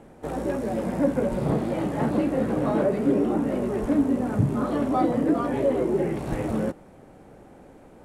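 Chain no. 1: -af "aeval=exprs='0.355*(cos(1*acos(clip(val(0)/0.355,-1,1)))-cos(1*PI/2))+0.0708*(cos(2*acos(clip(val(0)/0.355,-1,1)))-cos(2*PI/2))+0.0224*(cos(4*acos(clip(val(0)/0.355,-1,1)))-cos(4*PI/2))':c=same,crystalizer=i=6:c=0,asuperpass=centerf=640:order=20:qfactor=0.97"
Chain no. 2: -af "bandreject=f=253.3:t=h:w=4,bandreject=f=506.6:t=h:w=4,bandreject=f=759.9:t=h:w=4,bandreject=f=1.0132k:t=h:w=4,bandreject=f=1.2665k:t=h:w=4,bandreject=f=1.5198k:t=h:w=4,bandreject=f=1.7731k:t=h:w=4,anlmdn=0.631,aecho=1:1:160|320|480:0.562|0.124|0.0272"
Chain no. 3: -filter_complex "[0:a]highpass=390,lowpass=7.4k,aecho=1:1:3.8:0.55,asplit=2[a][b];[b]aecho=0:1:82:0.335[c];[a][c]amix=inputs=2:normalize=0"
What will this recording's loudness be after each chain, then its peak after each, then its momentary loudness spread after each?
-29.0, -24.0, -26.5 LUFS; -12.5, -9.0, -10.0 dBFS; 8, 6, 7 LU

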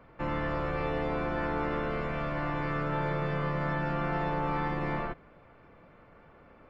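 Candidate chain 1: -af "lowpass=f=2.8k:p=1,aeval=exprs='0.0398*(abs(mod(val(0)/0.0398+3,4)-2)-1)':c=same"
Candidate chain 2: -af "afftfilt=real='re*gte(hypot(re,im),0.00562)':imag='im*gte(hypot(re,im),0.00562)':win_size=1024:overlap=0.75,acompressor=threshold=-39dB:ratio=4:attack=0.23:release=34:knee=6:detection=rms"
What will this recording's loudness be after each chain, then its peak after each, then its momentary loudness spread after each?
-34.0, -43.0 LUFS; -28.0, -33.5 dBFS; 2, 19 LU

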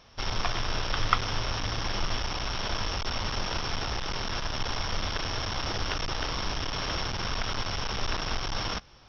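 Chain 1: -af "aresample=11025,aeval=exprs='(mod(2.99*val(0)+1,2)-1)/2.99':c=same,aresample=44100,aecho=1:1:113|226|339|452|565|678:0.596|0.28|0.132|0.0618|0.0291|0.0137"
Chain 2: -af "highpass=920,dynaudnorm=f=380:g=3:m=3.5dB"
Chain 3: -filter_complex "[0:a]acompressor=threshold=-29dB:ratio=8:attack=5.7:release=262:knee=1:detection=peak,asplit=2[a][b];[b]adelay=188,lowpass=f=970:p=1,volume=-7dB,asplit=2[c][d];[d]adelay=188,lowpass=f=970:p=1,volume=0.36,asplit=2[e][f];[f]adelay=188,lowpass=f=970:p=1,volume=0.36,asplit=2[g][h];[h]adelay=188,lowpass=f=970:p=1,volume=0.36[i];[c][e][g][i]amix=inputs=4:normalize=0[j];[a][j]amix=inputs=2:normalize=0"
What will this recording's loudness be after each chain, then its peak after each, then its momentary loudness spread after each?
-30.5, -29.5, -34.5 LUFS; -8.5, -3.5, -15.5 dBFS; 2, 2, 2 LU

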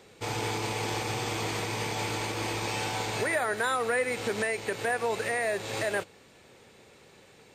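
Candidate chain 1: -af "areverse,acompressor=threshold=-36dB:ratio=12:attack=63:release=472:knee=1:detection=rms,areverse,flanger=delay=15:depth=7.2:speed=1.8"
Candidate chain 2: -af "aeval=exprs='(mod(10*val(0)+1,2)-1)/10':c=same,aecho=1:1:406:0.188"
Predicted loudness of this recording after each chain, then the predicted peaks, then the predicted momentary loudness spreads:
-41.5, -30.0 LUFS; -25.0, -18.5 dBFS; 17, 5 LU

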